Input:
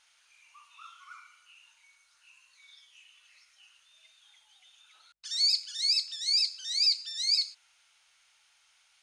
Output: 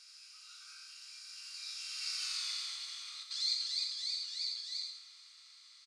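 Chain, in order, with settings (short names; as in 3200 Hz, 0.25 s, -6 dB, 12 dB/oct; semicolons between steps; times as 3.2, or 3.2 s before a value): per-bin compression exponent 0.4; Doppler pass-by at 3.56, 22 m/s, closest 9.3 m; on a send at -7 dB: high shelf 8000 Hz +9 dB + reverb, pre-delay 3 ms; on the sum: time stretch by phase-locked vocoder 0.65×; echo 85 ms -7 dB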